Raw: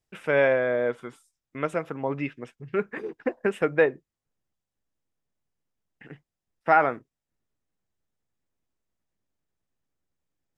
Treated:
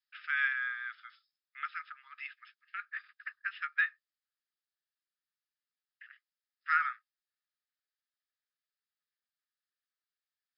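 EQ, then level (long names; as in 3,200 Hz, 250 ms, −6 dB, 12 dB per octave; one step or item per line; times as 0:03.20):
Chebyshev high-pass with heavy ripple 1,200 Hz, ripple 6 dB
linear-phase brick-wall low-pass 5,300 Hz
0.0 dB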